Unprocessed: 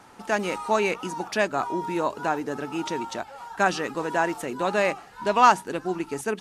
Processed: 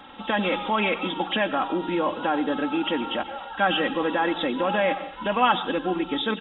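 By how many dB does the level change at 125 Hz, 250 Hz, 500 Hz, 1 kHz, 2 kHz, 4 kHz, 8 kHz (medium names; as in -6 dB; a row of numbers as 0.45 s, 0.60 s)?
+0.5 dB, +4.5 dB, 0.0 dB, -1.0 dB, +1.0 dB, +8.0 dB, under -40 dB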